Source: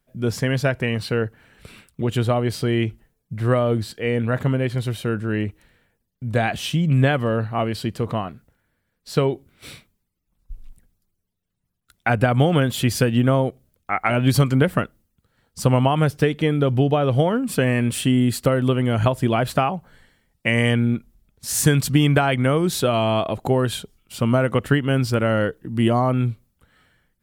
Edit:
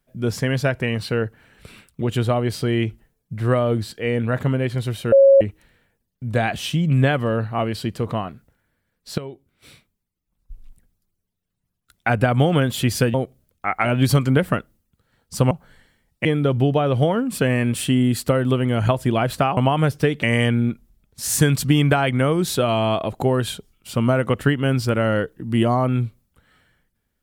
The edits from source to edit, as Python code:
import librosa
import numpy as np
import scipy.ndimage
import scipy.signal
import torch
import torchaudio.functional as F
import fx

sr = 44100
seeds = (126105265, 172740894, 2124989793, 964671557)

y = fx.edit(x, sr, fx.bleep(start_s=5.12, length_s=0.29, hz=548.0, db=-7.5),
    fx.fade_in_from(start_s=9.18, length_s=2.96, curve='qsin', floor_db=-15.5),
    fx.cut(start_s=13.14, length_s=0.25),
    fx.swap(start_s=15.76, length_s=0.66, other_s=19.74, other_length_s=0.74), tone=tone)